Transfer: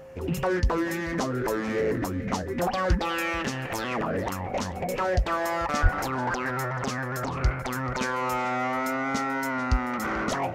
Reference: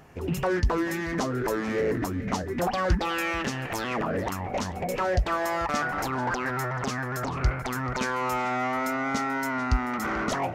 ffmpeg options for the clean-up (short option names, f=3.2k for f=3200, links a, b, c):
-filter_complex "[0:a]bandreject=f=530:w=30,asplit=3[a][b][c];[a]afade=t=out:st=5.82:d=0.02[d];[b]highpass=f=140:w=0.5412,highpass=f=140:w=1.3066,afade=t=in:st=5.82:d=0.02,afade=t=out:st=5.94:d=0.02[e];[c]afade=t=in:st=5.94:d=0.02[f];[d][e][f]amix=inputs=3:normalize=0"